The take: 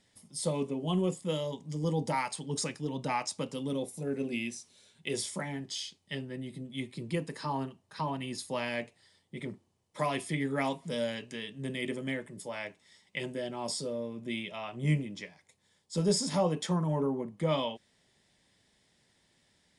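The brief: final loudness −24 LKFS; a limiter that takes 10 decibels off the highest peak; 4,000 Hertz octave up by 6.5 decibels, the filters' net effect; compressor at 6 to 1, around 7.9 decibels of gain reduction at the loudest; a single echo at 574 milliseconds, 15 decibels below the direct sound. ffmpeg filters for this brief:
ffmpeg -i in.wav -af "equalizer=frequency=4000:width_type=o:gain=9,acompressor=threshold=-31dB:ratio=6,alimiter=level_in=3.5dB:limit=-24dB:level=0:latency=1,volume=-3.5dB,aecho=1:1:574:0.178,volume=14dB" out.wav

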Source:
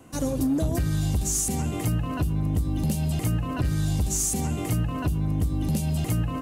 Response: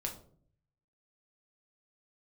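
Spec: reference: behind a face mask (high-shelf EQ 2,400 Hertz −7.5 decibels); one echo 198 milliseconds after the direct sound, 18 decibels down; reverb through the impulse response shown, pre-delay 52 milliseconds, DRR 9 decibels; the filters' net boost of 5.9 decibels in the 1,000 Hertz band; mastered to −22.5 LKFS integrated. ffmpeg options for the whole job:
-filter_complex "[0:a]equalizer=frequency=1000:width_type=o:gain=8.5,aecho=1:1:198:0.126,asplit=2[link_01][link_02];[1:a]atrim=start_sample=2205,adelay=52[link_03];[link_02][link_03]afir=irnorm=-1:irlink=0,volume=-9.5dB[link_04];[link_01][link_04]amix=inputs=2:normalize=0,highshelf=frequency=2400:gain=-7.5,volume=3dB"

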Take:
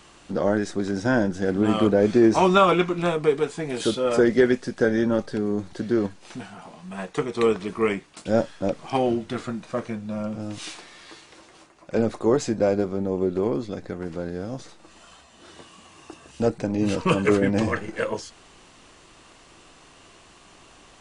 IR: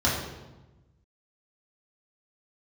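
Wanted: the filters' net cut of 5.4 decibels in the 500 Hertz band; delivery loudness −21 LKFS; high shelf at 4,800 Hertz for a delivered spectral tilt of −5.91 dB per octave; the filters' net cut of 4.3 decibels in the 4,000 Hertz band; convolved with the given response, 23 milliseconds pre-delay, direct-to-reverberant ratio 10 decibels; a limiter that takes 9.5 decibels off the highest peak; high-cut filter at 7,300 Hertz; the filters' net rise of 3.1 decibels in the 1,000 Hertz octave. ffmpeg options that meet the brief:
-filter_complex "[0:a]lowpass=7300,equalizer=frequency=500:width_type=o:gain=-8.5,equalizer=frequency=1000:width_type=o:gain=6.5,equalizer=frequency=4000:width_type=o:gain=-8,highshelf=frequency=4800:gain=5,alimiter=limit=-14.5dB:level=0:latency=1,asplit=2[link_01][link_02];[1:a]atrim=start_sample=2205,adelay=23[link_03];[link_02][link_03]afir=irnorm=-1:irlink=0,volume=-24dB[link_04];[link_01][link_04]amix=inputs=2:normalize=0,volume=6.5dB"

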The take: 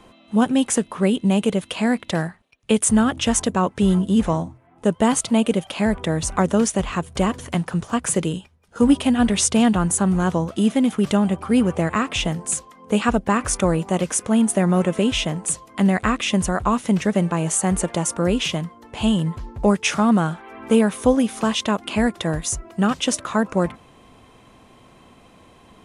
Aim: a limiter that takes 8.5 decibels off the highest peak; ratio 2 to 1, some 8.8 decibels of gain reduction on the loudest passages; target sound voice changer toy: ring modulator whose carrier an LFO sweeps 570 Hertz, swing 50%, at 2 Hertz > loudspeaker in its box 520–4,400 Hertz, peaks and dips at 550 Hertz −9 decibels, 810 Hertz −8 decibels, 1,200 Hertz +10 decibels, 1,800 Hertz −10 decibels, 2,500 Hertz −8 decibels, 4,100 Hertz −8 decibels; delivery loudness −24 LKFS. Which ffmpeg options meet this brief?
ffmpeg -i in.wav -af "acompressor=threshold=-27dB:ratio=2,alimiter=limit=-18.5dB:level=0:latency=1,aeval=exprs='val(0)*sin(2*PI*570*n/s+570*0.5/2*sin(2*PI*2*n/s))':channel_layout=same,highpass=520,equalizer=frequency=550:width_type=q:width=4:gain=-9,equalizer=frequency=810:width_type=q:width=4:gain=-8,equalizer=frequency=1200:width_type=q:width=4:gain=10,equalizer=frequency=1800:width_type=q:width=4:gain=-10,equalizer=frequency=2500:width_type=q:width=4:gain=-8,equalizer=frequency=4100:width_type=q:width=4:gain=-8,lowpass=frequency=4400:width=0.5412,lowpass=frequency=4400:width=1.3066,volume=11.5dB" out.wav

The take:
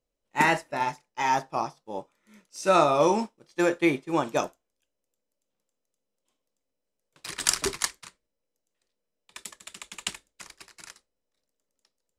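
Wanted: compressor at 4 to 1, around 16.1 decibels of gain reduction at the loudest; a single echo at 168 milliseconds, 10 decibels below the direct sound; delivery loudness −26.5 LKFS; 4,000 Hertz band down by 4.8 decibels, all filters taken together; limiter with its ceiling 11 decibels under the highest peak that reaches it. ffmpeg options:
ffmpeg -i in.wav -af "equalizer=frequency=4000:width_type=o:gain=-6.5,acompressor=threshold=-37dB:ratio=4,alimiter=level_in=7dB:limit=-24dB:level=0:latency=1,volume=-7dB,aecho=1:1:168:0.316,volume=18dB" out.wav

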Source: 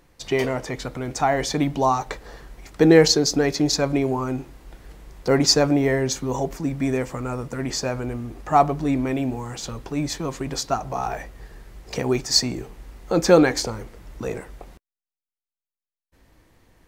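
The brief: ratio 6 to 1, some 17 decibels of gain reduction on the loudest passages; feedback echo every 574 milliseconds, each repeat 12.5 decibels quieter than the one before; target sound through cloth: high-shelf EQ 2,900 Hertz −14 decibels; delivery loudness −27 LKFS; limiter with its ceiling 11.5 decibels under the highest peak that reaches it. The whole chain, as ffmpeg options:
ffmpeg -i in.wav -af "acompressor=threshold=-28dB:ratio=6,alimiter=level_in=3.5dB:limit=-24dB:level=0:latency=1,volume=-3.5dB,highshelf=frequency=2900:gain=-14,aecho=1:1:574|1148|1722:0.237|0.0569|0.0137,volume=11dB" out.wav

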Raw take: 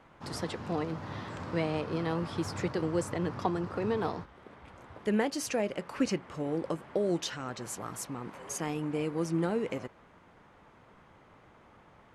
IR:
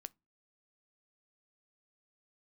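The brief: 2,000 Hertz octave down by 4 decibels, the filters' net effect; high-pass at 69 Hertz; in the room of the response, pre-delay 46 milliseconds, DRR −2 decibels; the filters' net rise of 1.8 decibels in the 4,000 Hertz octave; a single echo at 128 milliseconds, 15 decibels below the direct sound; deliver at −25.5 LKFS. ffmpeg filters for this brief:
-filter_complex "[0:a]highpass=69,equalizer=frequency=2000:width_type=o:gain=-6,equalizer=frequency=4000:width_type=o:gain=4,aecho=1:1:128:0.178,asplit=2[link_01][link_02];[1:a]atrim=start_sample=2205,adelay=46[link_03];[link_02][link_03]afir=irnorm=-1:irlink=0,volume=7.5dB[link_04];[link_01][link_04]amix=inputs=2:normalize=0,volume=4dB"

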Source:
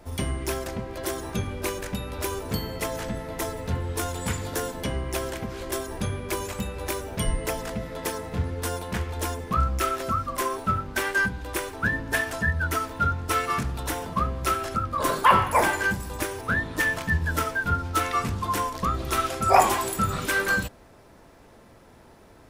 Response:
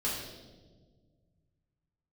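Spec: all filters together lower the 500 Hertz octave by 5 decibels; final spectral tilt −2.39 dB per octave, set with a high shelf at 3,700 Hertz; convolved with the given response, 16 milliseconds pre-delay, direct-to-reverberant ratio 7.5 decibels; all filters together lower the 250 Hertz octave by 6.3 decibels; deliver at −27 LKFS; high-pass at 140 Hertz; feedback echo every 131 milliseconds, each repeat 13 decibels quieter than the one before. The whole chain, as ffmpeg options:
-filter_complex "[0:a]highpass=140,equalizer=frequency=250:width_type=o:gain=-6.5,equalizer=frequency=500:width_type=o:gain=-5,highshelf=frequency=3700:gain=7.5,aecho=1:1:131|262|393:0.224|0.0493|0.0108,asplit=2[link_01][link_02];[1:a]atrim=start_sample=2205,adelay=16[link_03];[link_02][link_03]afir=irnorm=-1:irlink=0,volume=-13.5dB[link_04];[link_01][link_04]amix=inputs=2:normalize=0,volume=-1.5dB"

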